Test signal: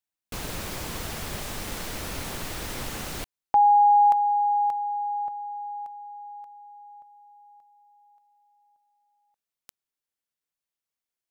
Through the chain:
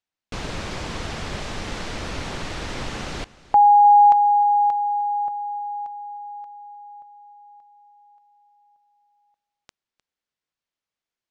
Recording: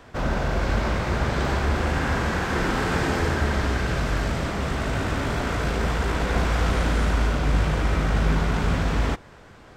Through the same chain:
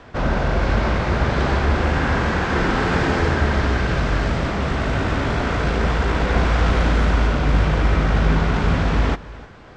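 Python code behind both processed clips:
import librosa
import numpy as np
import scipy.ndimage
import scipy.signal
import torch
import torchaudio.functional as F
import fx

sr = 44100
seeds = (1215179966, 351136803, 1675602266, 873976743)

p1 = scipy.signal.sosfilt(scipy.signal.bessel(4, 5000.0, 'lowpass', norm='mag', fs=sr, output='sos'), x)
p2 = p1 + fx.echo_single(p1, sr, ms=305, db=-19.5, dry=0)
y = p2 * 10.0 ** (4.5 / 20.0)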